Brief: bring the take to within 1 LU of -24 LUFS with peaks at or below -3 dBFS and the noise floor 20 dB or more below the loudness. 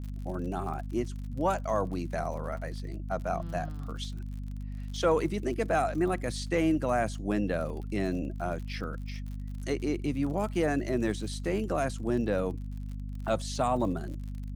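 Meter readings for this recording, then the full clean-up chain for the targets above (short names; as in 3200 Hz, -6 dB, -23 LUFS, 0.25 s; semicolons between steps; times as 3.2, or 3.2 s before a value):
ticks 49/s; hum 50 Hz; harmonics up to 250 Hz; hum level -34 dBFS; loudness -32.0 LUFS; peak -14.0 dBFS; loudness target -24.0 LUFS
-> de-click; notches 50/100/150/200/250 Hz; gain +8 dB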